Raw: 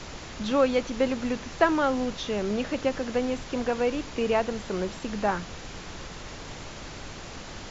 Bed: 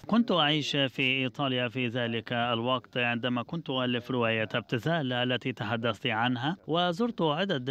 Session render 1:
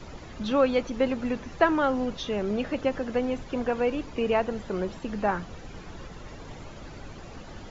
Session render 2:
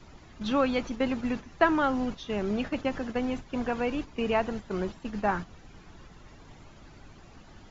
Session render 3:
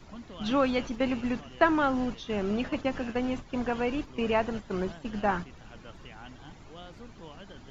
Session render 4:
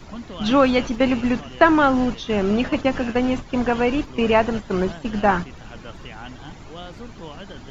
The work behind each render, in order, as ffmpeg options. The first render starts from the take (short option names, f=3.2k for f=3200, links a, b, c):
-af "afftdn=nr=11:nf=-41"
-af "agate=range=-8dB:threshold=-32dB:ratio=16:detection=peak,equalizer=f=510:t=o:w=0.51:g=-6"
-filter_complex "[1:a]volume=-20.5dB[a];[0:a][a]amix=inputs=2:normalize=0"
-af "volume=9.5dB,alimiter=limit=-1dB:level=0:latency=1"